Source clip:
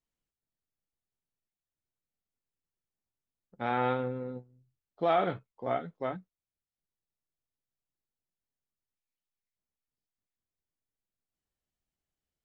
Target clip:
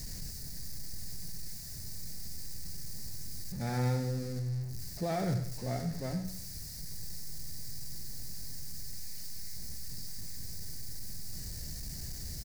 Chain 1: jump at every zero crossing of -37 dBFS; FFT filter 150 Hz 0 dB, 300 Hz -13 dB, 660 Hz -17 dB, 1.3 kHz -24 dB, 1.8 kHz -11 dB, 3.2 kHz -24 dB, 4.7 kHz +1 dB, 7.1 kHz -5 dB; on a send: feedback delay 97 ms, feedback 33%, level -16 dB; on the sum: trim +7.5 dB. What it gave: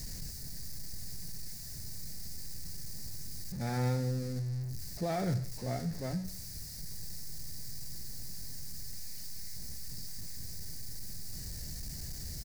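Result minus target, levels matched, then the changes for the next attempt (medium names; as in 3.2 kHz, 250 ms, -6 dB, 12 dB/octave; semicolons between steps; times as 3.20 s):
echo-to-direct -7 dB
change: feedback delay 97 ms, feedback 33%, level -9 dB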